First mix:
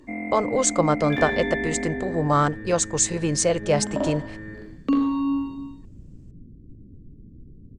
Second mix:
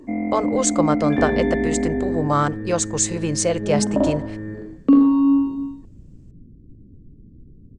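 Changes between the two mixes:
speech: send +7.0 dB; first sound: add tilt shelf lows +9 dB, about 1300 Hz

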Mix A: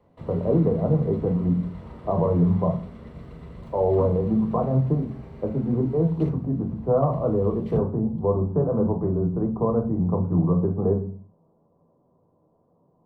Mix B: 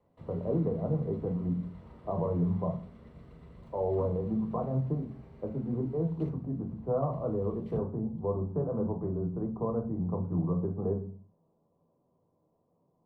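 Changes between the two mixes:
speech -9.0 dB; background -10.5 dB

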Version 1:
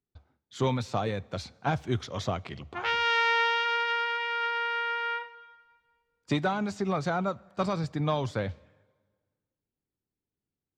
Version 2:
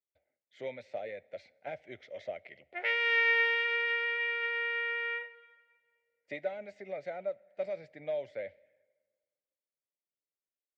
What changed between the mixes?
background +9.0 dB; master: add double band-pass 1100 Hz, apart 1.8 oct

